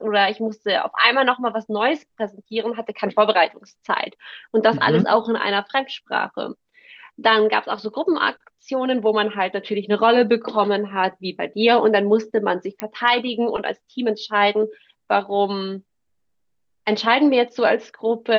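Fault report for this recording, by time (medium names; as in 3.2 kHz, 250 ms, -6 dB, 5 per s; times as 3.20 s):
12.80 s: pop -10 dBFS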